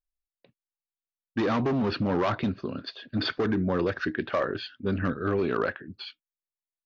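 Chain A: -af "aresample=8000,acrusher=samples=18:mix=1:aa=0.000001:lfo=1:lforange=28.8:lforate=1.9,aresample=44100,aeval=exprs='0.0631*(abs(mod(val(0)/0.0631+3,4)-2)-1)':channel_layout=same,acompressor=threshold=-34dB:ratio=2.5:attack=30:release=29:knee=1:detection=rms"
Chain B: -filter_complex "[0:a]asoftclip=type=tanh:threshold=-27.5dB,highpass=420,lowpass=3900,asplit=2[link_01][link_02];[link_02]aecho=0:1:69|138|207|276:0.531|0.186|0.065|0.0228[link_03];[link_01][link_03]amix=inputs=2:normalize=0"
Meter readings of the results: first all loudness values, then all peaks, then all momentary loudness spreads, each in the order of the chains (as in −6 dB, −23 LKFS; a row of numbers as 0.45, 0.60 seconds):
−35.5, −36.0 LKFS; −24.0, −21.0 dBFS; 9, 9 LU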